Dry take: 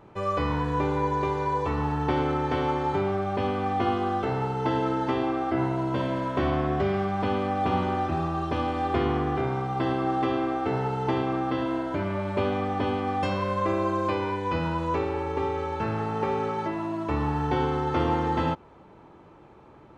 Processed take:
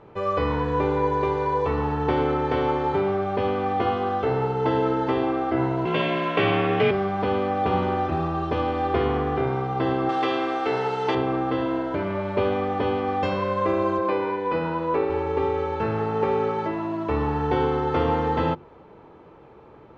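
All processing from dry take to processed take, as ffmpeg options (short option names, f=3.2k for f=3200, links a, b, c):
-filter_complex "[0:a]asettb=1/sr,asplit=3[a][b][c];[a]atrim=end=5.854[d];[b]atrim=start=5.85:end=6.91,asetpts=PTS-STARTPTS,afade=t=in:d=0.004:c=qsin,afade=t=out:st=1.056:d=0.004:c=qsin,equalizer=f=2.6k:t=o:w=0.94:g=15,afreqshift=35[e];[c]atrim=start=6.906[f];[d][e]acrossfade=d=0.004:c1=hsin:c2=qsin[g];[g][f]acrossfade=d=0.004:c1=qsin:c2=hsin,asettb=1/sr,asplit=3[h][i][j];[h]atrim=end=10.094[k];[i]atrim=start=10.09:end=11.15,asetpts=PTS-STARTPTS,afade=t=in:d=0.004:c=qsin,afade=t=out:st=1.056:d=0.004:c=qsin,highpass=f=350:p=1,highshelf=f=2.3k:g=12[l];[j]atrim=start=11.146[m];[k][l]acrossfade=d=0.004:c1=hsin:c2=qsin[n];[n][m]acrossfade=d=0.004:c1=qsin:c2=hsin,asettb=1/sr,asplit=3[o][p][q];[o]atrim=end=13.984[r];[p]atrim=start=13.98:end=15.1,asetpts=PTS-STARTPTS,afade=t=in:d=0.004:c=qsin,afade=t=out:st=1.116:d=0.004:c=qsin,highpass=170,lowpass=4.3k,equalizer=f=3.1k:t=o:w=0.38:g=-4[s];[q]atrim=start=15.096[t];[r][s]acrossfade=d=0.004:c1=hsin:c2=qsin[u];[u][t]acrossfade=d=0.004:c1=qsin:c2=hsin,lowpass=4.6k,equalizer=f=460:w=4.4:g=6.5,bandreject=f=50:t=h:w=6,bandreject=f=100:t=h:w=6,bandreject=f=150:t=h:w=6,bandreject=f=200:t=h:w=6,bandreject=f=250:t=h:w=6,bandreject=f=300:t=h:w=6,bandreject=f=350:t=h:w=6,volume=2dB"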